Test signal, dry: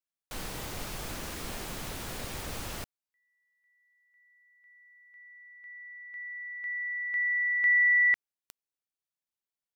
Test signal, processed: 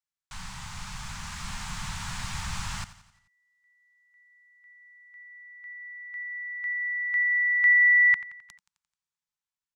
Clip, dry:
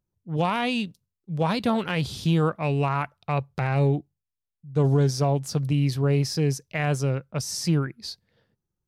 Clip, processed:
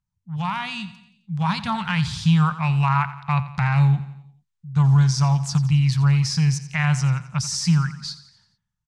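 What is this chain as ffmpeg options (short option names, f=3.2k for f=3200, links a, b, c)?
-filter_complex "[0:a]dynaudnorm=f=580:g=5:m=6dB,firequalizer=gain_entry='entry(190,0);entry(290,-25);entry(460,-28);entry(890,1);entry(2800,-2);entry(7500,0);entry(13000,-20)':delay=0.05:min_phase=1,asplit=2[a][b];[b]aecho=0:1:87|174|261|348|435:0.178|0.0925|0.0481|0.025|0.013[c];[a][c]amix=inputs=2:normalize=0"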